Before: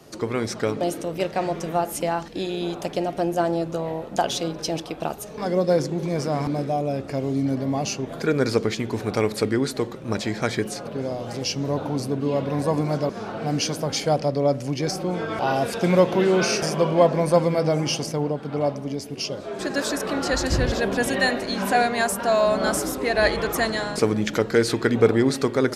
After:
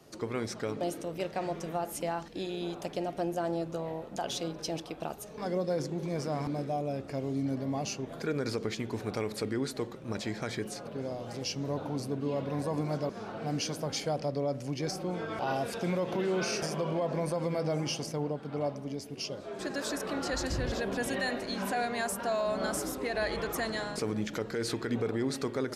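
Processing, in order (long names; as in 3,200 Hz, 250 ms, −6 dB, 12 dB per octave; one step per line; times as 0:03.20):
brickwall limiter −14 dBFS, peak gain reduction 9.5 dB
level −8.5 dB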